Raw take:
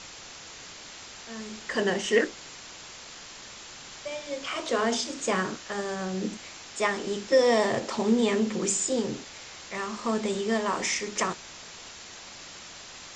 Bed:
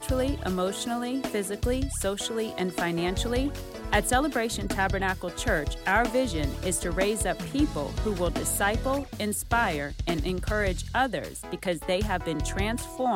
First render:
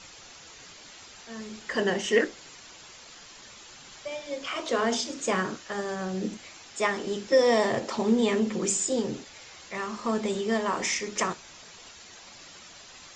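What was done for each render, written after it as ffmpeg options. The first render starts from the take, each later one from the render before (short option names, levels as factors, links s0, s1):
-af "afftdn=nr=7:nf=-45"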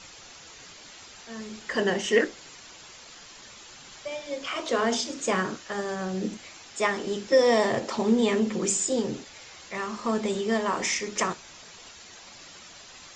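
-af "volume=1.12"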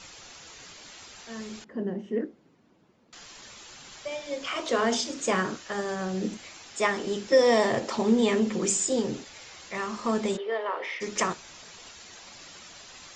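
-filter_complex "[0:a]asettb=1/sr,asplit=3[s0][s1][s2];[s0]atrim=end=1.644[s3];[s1]atrim=start=1.64:end=3.13,asetpts=PTS-STARTPTS,afade=t=in:d=0.004:c=qsin,afade=t=out:st=1.486:d=0.004:c=qsin,bandpass=f=220:t=q:w=1.6[s4];[s2]atrim=start=3.126[s5];[s3][s4]acrossfade=d=0.004:c1=hsin:c2=qsin[s6];[s6][s5]acrossfade=d=0.004:c1=qsin:c2=hsin,asplit=3[s7][s8][s9];[s7]afade=t=out:st=10.36:d=0.02[s10];[s8]highpass=f=460:w=0.5412,highpass=f=460:w=1.3066,equalizer=f=480:t=q:w=4:g=4,equalizer=f=740:t=q:w=4:g=-5,equalizer=f=1100:t=q:w=4:g=-4,equalizer=f=1600:t=q:w=4:g=-4,equalizer=f=2500:t=q:w=4:g=-6,lowpass=f=3000:w=0.5412,lowpass=f=3000:w=1.3066,afade=t=in:st=10.36:d=0.02,afade=t=out:st=11:d=0.02[s11];[s9]afade=t=in:st=11:d=0.02[s12];[s10][s11][s12]amix=inputs=3:normalize=0"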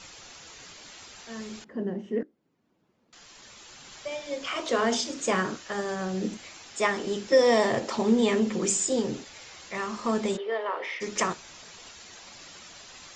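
-filter_complex "[0:a]asplit=2[s0][s1];[s0]atrim=end=2.23,asetpts=PTS-STARTPTS,afade=t=out:st=2.226:d=0.004:c=hsin:silence=0.112202[s2];[s1]atrim=start=2.23,asetpts=PTS-STARTPTS,afade=t=in:d=1.78:silence=0.112202[s3];[s2][s3]concat=n=2:v=0:a=1"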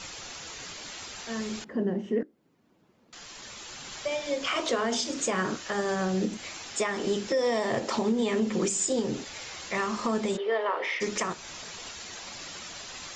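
-filter_complex "[0:a]asplit=2[s0][s1];[s1]acompressor=threshold=0.0178:ratio=6,volume=0.944[s2];[s0][s2]amix=inputs=2:normalize=0,alimiter=limit=0.126:level=0:latency=1:release=206"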